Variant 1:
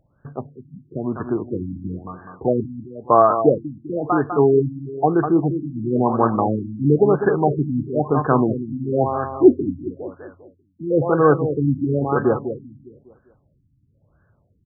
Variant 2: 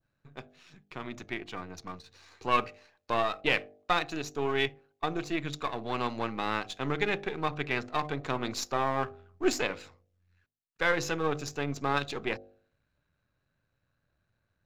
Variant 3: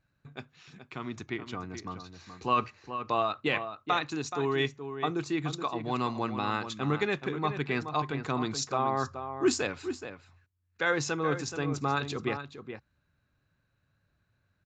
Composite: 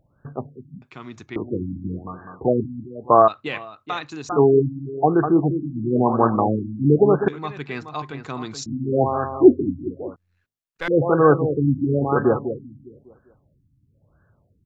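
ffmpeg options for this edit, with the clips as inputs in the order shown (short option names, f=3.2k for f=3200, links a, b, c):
-filter_complex "[2:a]asplit=3[a][b][c];[0:a]asplit=5[d][e][f][g][h];[d]atrim=end=0.822[i];[a]atrim=start=0.818:end=1.362[j];[e]atrim=start=1.358:end=3.282[k];[b]atrim=start=3.278:end=4.292[l];[f]atrim=start=4.288:end=7.282[m];[c]atrim=start=7.278:end=8.662[n];[g]atrim=start=8.658:end=10.162[o];[1:a]atrim=start=10.158:end=10.882[p];[h]atrim=start=10.878[q];[i][j]acrossfade=d=0.004:c1=hsin:c2=hsin[r];[r][k]acrossfade=d=0.004:c1=hsin:c2=hsin[s];[s][l]acrossfade=d=0.004:c1=hsin:c2=hsin[t];[t][m]acrossfade=d=0.004:c1=hsin:c2=hsin[u];[u][n]acrossfade=d=0.004:c1=hsin:c2=hsin[v];[v][o]acrossfade=d=0.004:c1=hsin:c2=hsin[w];[w][p]acrossfade=d=0.004:c1=hsin:c2=hsin[x];[x][q]acrossfade=d=0.004:c1=hsin:c2=hsin"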